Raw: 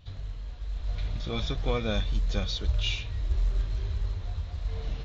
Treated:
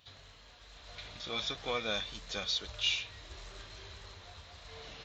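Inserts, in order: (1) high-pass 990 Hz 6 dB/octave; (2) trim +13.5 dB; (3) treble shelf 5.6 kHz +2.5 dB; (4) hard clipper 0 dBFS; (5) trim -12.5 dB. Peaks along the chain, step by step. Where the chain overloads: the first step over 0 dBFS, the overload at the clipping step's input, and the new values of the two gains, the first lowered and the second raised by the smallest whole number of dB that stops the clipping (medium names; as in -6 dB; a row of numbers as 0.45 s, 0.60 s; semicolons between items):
-18.5 dBFS, -5.0 dBFS, -4.5 dBFS, -4.5 dBFS, -17.0 dBFS; nothing clips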